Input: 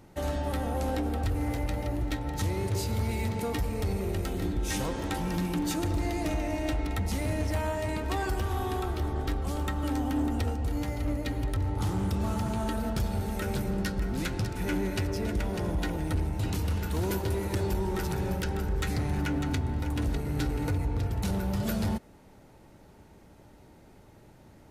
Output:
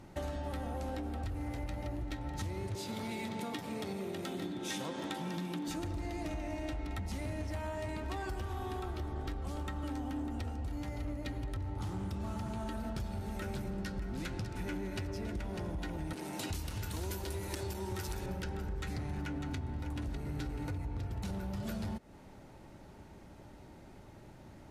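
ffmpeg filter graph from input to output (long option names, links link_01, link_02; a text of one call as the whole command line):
ffmpeg -i in.wav -filter_complex "[0:a]asettb=1/sr,asplit=3[link_01][link_02][link_03];[link_01]atrim=end=2.754[link_04];[link_02]atrim=start=2.75:end=5.68,asetpts=PTS-STARTPTS,afade=type=in:duration=0.004:curve=qsin,afade=type=out:start_time=2.926:duration=0.004:curve=qsin,highpass=frequency=150:width=0.5412,highpass=frequency=150:width=1.3066,equalizer=frequency=3500:width=6.3:gain=7.5[link_05];[link_03]atrim=start=5.676[link_06];[link_04][link_05]acrossfade=duration=0.004:curve1=hsin:curve2=qsin[link_07];[link_07][link_06]acrossfade=duration=0.004:curve1=qsin:curve2=hsin,asettb=1/sr,asplit=3[link_08][link_09][link_10];[link_08]atrim=end=16.134[link_11];[link_09]atrim=start=16.13:end=18.26,asetpts=PTS-STARTPTS,afade=type=in:duration=0.004:curve=qsin,afade=type=out:start_time=2.126:duration=0.004:curve=qsin,highshelf=frequency=3500:gain=11.5,acrossover=split=180[link_12][link_13];[link_12]adelay=370[link_14];[link_14][link_13]amix=inputs=2:normalize=0,atrim=end_sample=93933[link_15];[link_10]atrim=start=18.256[link_16];[link_11][link_15]acrossfade=duration=0.004:curve1=hsin:curve2=qsin[link_17];[link_17][link_16]acrossfade=duration=0.004:curve1=qsin:curve2=hsin,highshelf=frequency=12000:gain=-11,bandreject=frequency=460:width=12,acompressor=threshold=-37dB:ratio=6,volume=1dB" out.wav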